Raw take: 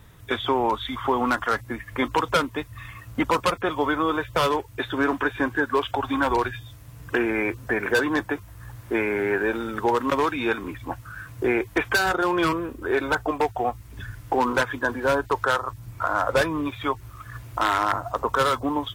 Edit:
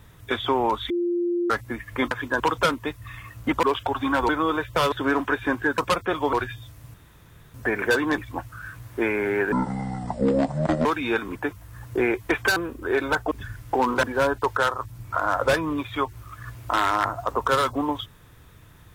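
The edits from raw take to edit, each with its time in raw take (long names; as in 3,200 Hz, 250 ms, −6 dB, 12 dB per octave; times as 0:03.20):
0:00.90–0:01.50: beep over 348 Hz −21 dBFS
0:03.34–0:03.89: swap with 0:05.71–0:06.37
0:04.52–0:04.85: remove
0:06.98–0:07.58: fill with room tone
0:08.22–0:08.72: swap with 0:10.71–0:11.32
0:09.45–0:10.21: play speed 57%
0:12.03–0:12.56: remove
0:13.31–0:13.90: remove
0:14.62–0:14.91: move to 0:02.11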